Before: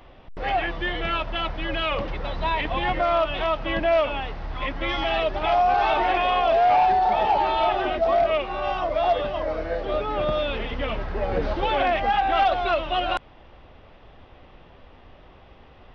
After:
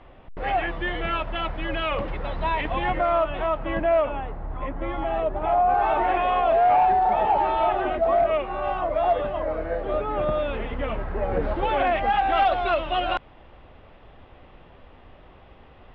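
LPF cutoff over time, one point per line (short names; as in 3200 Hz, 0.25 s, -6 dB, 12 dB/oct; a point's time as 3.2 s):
2.72 s 2700 Hz
3.39 s 1700 Hz
3.92 s 1700 Hz
4.42 s 1100 Hz
5.37 s 1100 Hz
6.2 s 2000 Hz
11.39 s 2000 Hz
12.34 s 3500 Hz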